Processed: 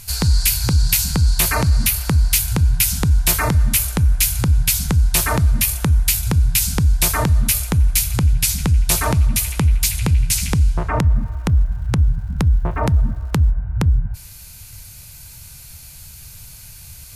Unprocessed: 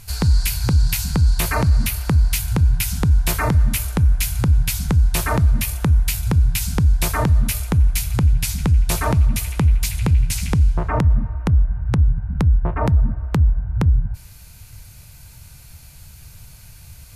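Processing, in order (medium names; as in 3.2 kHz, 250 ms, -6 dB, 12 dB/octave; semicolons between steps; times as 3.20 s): treble shelf 2.7 kHz +8.5 dB; 11.15–13.50 s: crackle 480 per s -44 dBFS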